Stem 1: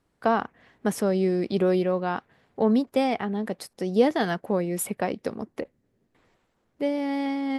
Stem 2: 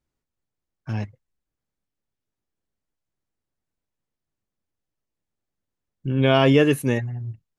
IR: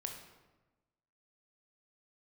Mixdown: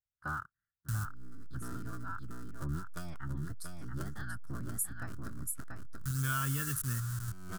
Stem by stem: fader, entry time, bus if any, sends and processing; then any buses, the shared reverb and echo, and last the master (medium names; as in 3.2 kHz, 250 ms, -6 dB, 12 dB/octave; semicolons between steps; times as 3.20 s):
+2.5 dB, 0.00 s, no send, echo send -5.5 dB, cycle switcher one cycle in 3, inverted; gain riding within 4 dB 0.5 s; spectral contrast expander 1.5:1; auto duck -21 dB, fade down 0.45 s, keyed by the second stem
-0.5 dB, 0.00 s, no send, no echo send, send-on-delta sampling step -27.5 dBFS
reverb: none
echo: delay 684 ms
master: FFT filter 110 Hz 0 dB, 500 Hz -30 dB, 800 Hz -26 dB, 1.4 kHz +5 dB, 2.2 kHz -18 dB, 8.1 kHz +8 dB; compression 2:1, threshold -36 dBFS, peak gain reduction 8.5 dB